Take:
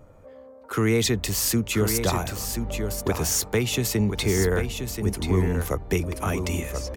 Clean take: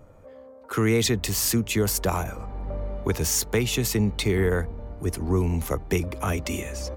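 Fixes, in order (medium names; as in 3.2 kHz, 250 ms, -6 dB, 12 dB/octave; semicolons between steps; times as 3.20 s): inverse comb 1031 ms -7 dB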